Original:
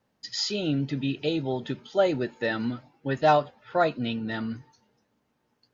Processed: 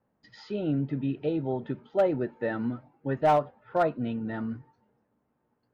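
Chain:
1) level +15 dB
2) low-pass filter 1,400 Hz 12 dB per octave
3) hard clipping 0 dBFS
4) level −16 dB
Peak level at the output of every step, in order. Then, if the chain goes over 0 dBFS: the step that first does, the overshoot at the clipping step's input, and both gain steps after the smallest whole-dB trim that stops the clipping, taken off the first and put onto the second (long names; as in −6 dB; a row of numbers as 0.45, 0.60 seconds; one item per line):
+5.5, +4.0, 0.0, −16.0 dBFS
step 1, 4.0 dB
step 1 +11 dB, step 4 −12 dB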